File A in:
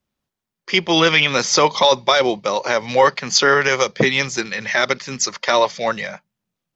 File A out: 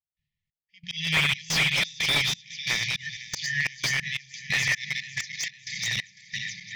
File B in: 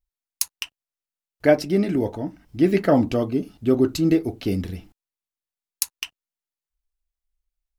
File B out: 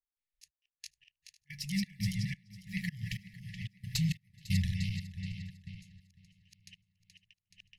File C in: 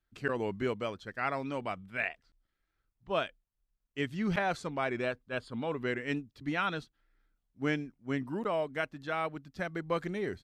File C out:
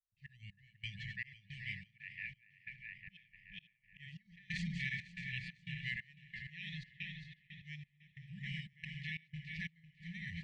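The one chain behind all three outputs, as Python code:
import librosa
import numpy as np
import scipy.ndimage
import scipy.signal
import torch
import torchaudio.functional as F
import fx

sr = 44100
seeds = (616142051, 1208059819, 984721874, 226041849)

p1 = fx.reverse_delay_fb(x, sr, ms=213, feedback_pct=71, wet_db=-6.0)
p2 = fx.env_lowpass(p1, sr, base_hz=3000.0, full_db=-15.5)
p3 = fx.hum_notches(p2, sr, base_hz=60, count=9)
p4 = fx.auto_swell(p3, sr, attack_ms=410.0)
p5 = fx.step_gate(p4, sr, bpm=90, pattern='.xx..xxx.xx', floor_db=-24.0, edge_ms=4.5)
p6 = fx.brickwall_bandstop(p5, sr, low_hz=190.0, high_hz=1700.0)
p7 = p6 + fx.echo_feedback(p6, sr, ms=501, feedback_pct=33, wet_db=-18, dry=0)
y = fx.slew_limit(p7, sr, full_power_hz=280.0)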